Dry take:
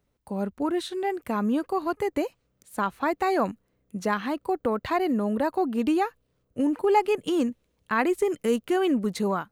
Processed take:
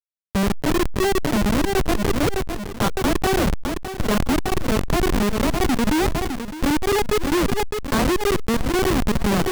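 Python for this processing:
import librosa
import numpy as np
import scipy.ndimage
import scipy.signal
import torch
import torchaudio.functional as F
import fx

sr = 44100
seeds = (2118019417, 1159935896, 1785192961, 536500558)

p1 = fx.env_lowpass(x, sr, base_hz=1900.0, full_db=-21.5)
p2 = fx.over_compress(p1, sr, threshold_db=-28.0, ratio=-0.5)
p3 = p1 + (p2 * 10.0 ** (-2.0 / 20.0))
p4 = fx.dispersion(p3, sr, late='lows', ms=47.0, hz=550.0)
p5 = fx.schmitt(p4, sr, flips_db=-19.0)
p6 = p5 + fx.echo_feedback(p5, sr, ms=610, feedback_pct=28, wet_db=-19.0, dry=0)
p7 = fx.sustainer(p6, sr, db_per_s=28.0)
y = p7 * 10.0 ** (5.5 / 20.0)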